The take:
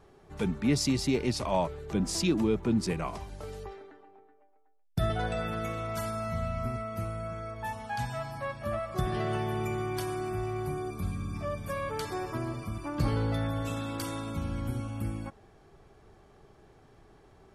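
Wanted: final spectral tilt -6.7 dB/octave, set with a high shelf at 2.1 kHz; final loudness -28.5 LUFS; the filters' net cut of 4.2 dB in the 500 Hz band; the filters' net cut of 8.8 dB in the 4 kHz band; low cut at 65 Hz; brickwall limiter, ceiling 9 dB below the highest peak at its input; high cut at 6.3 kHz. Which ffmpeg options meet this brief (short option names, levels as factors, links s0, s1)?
-af "highpass=65,lowpass=6300,equalizer=f=500:t=o:g=-5.5,highshelf=f=2100:g=-6,equalizer=f=4000:t=o:g=-4,volume=2.66,alimiter=limit=0.133:level=0:latency=1"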